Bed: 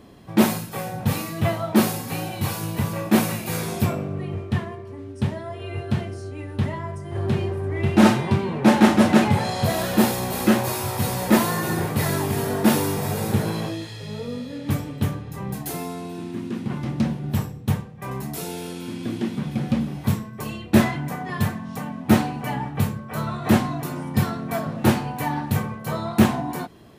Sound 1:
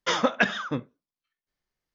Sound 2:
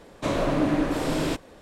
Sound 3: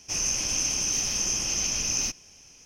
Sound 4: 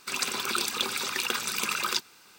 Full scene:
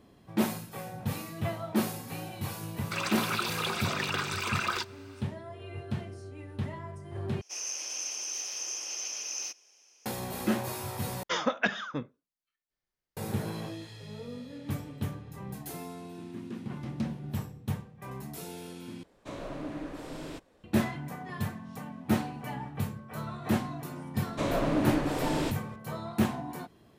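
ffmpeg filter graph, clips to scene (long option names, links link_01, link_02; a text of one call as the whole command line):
ffmpeg -i bed.wav -i cue0.wav -i cue1.wav -i cue2.wav -i cue3.wav -filter_complex "[2:a]asplit=2[link_01][link_02];[0:a]volume=-10.5dB[link_03];[4:a]asplit=2[link_04][link_05];[link_05]highpass=frequency=720:poles=1,volume=17dB,asoftclip=type=tanh:threshold=-8.5dB[link_06];[link_04][link_06]amix=inputs=2:normalize=0,lowpass=frequency=1500:poles=1,volume=-6dB[link_07];[3:a]highpass=frequency=390:width=0.5412,highpass=frequency=390:width=1.3066[link_08];[link_03]asplit=4[link_09][link_10][link_11][link_12];[link_09]atrim=end=7.414[link_13];[link_08]atrim=end=2.65,asetpts=PTS-STARTPTS,volume=-9dB[link_14];[link_10]atrim=start=10.056:end=11.234[link_15];[1:a]atrim=end=1.94,asetpts=PTS-STARTPTS,volume=-5.5dB[link_16];[link_11]atrim=start=13.166:end=19.034[link_17];[link_01]atrim=end=1.61,asetpts=PTS-STARTPTS,volume=-15dB[link_18];[link_12]atrim=start=20.636[link_19];[link_07]atrim=end=2.38,asetpts=PTS-STARTPTS,volume=-6dB,afade=type=in:duration=0.004:curve=hsin,afade=type=out:start_time=2.376:duration=0.004:curve=hsin,adelay=2840[link_20];[link_02]atrim=end=1.61,asetpts=PTS-STARTPTS,volume=-4.5dB,afade=type=in:duration=0.004:curve=hsin,afade=type=out:start_time=1.606:duration=0.004:curve=hsin,adelay=24150[link_21];[link_13][link_14]acrossfade=duration=0.004:curve1=hsin:curve2=hsin[link_22];[link_22][link_15]acrossfade=duration=0.004:curve1=hsin:curve2=hsin[link_23];[link_23][link_16]acrossfade=duration=0.004:curve1=hsin:curve2=hsin[link_24];[link_24][link_17]acrossfade=duration=0.004:curve1=hsin:curve2=hsin[link_25];[link_25][link_18]acrossfade=duration=0.004:curve1=hsin:curve2=hsin[link_26];[link_26][link_19]acrossfade=duration=0.004:curve1=hsin:curve2=hsin[link_27];[link_27][link_20][link_21]amix=inputs=3:normalize=0" out.wav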